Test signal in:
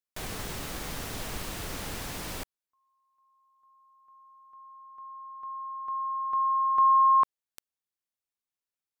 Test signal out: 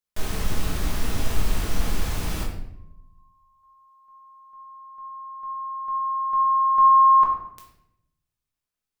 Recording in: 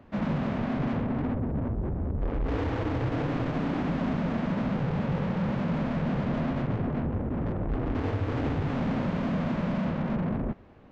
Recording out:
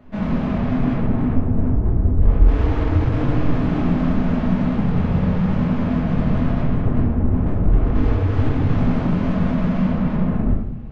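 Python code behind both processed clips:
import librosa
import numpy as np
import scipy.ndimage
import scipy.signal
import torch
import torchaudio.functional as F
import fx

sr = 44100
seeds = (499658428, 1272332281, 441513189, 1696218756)

y = fx.low_shelf(x, sr, hz=94.0, db=11.5)
y = fx.room_shoebox(y, sr, seeds[0], volume_m3=210.0, walls='mixed', distance_m=1.4)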